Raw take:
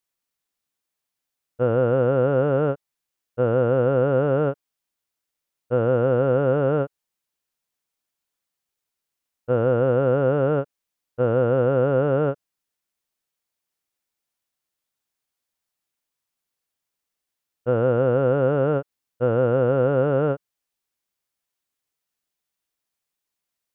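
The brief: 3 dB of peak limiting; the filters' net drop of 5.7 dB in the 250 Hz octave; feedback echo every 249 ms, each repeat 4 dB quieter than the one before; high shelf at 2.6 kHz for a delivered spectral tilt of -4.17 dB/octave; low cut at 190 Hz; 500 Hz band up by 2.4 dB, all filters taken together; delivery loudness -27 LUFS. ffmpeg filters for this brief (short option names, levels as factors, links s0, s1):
-af "highpass=190,equalizer=f=250:t=o:g=-7.5,equalizer=f=500:t=o:g=4.5,highshelf=f=2600:g=-5,alimiter=limit=0.224:level=0:latency=1,aecho=1:1:249|498|747|996|1245|1494|1743|1992|2241:0.631|0.398|0.25|0.158|0.0994|0.0626|0.0394|0.0249|0.0157,volume=0.473"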